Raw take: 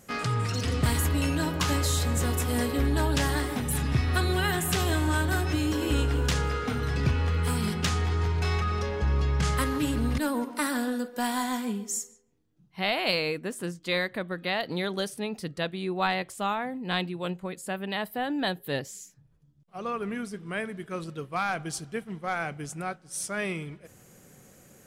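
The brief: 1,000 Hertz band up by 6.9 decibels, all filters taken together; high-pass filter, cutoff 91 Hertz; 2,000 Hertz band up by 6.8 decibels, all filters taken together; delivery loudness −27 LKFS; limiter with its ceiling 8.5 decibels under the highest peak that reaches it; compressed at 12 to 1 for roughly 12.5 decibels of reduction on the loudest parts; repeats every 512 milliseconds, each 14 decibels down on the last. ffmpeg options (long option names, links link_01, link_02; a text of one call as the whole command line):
ffmpeg -i in.wav -af "highpass=91,equalizer=frequency=1000:width_type=o:gain=7.5,equalizer=frequency=2000:width_type=o:gain=6,acompressor=threshold=-30dB:ratio=12,alimiter=level_in=1dB:limit=-24dB:level=0:latency=1,volume=-1dB,aecho=1:1:512|1024:0.2|0.0399,volume=8.5dB" out.wav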